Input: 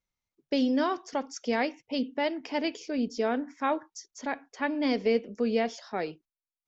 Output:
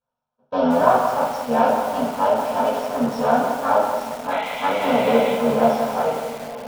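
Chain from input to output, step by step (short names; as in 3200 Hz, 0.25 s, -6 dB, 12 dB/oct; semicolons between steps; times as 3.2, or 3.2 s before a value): cycle switcher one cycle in 3, muted; high shelf 5100 Hz -6.5 dB; notch 1100 Hz, Q 6.6; transient shaper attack -3 dB, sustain +8 dB; fixed phaser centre 850 Hz, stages 4; in parallel at -11.5 dB: wavefolder -27 dBFS; on the sum: painted sound noise, 4.3–5.33, 1900–4200 Hz -41 dBFS; air absorption 160 m; diffused feedback echo 0.985 s, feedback 50%, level -15 dB; reverb RT60 0.60 s, pre-delay 3 ms, DRR -7.5 dB; lo-fi delay 0.178 s, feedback 55%, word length 5-bit, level -7 dB; gain -2 dB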